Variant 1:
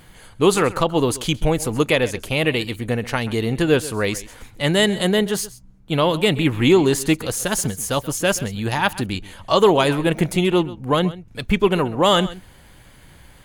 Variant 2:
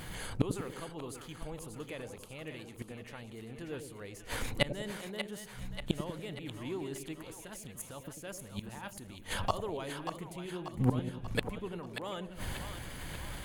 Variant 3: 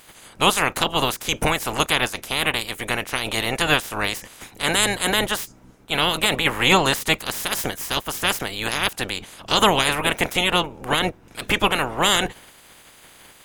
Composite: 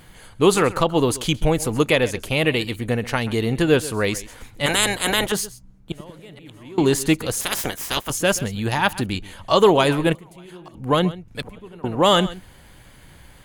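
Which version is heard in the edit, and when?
1
4.66–5.32 s: from 3
5.92–6.78 s: from 2
7.41–8.10 s: from 3
10.15–10.75 s: from 2
11.42–11.84 s: from 2

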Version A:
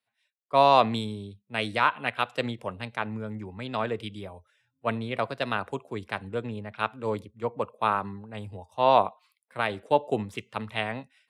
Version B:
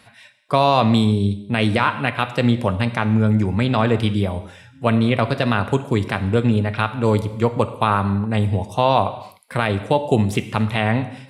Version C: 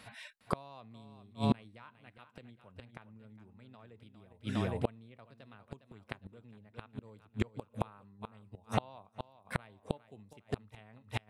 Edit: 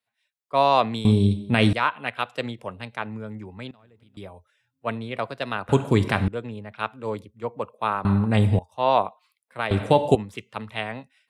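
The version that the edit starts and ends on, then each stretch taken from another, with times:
A
1.05–1.73 s: from B
3.71–4.17 s: from C
5.69–6.28 s: from B
8.05–8.59 s: from B
9.71–10.15 s: from B

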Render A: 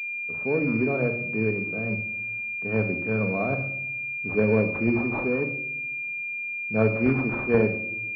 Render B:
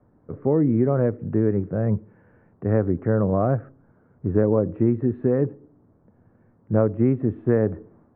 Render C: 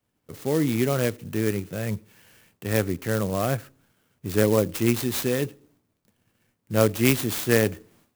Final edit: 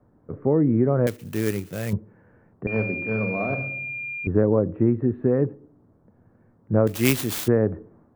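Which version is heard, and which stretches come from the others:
B
1.07–1.93 s: from C
2.67–4.27 s: from A
6.87–7.48 s: from C

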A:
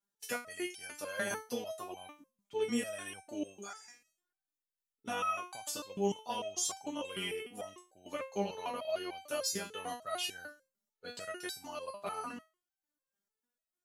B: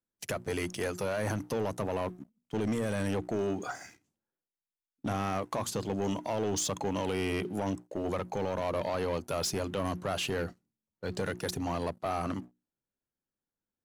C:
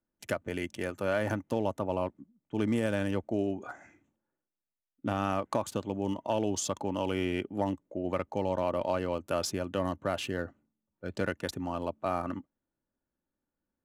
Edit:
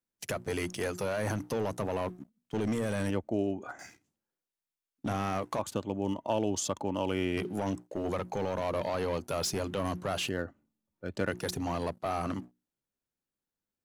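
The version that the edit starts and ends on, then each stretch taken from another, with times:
B
3.10–3.79 s: from C
5.59–7.37 s: from C
10.29–11.31 s: from C
not used: A

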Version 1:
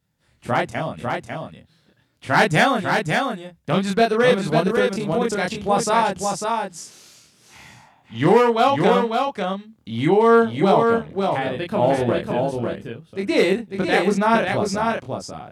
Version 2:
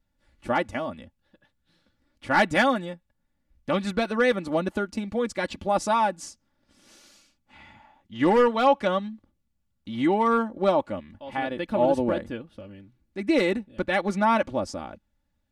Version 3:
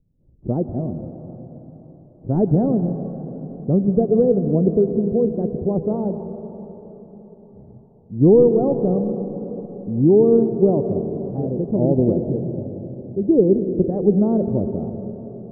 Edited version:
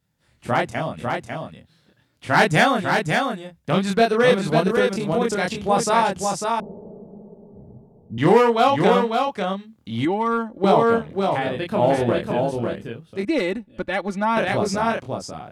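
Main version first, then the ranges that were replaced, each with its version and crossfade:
1
6.60–8.18 s: from 3
10.05–10.64 s: from 2
13.25–14.37 s: from 2

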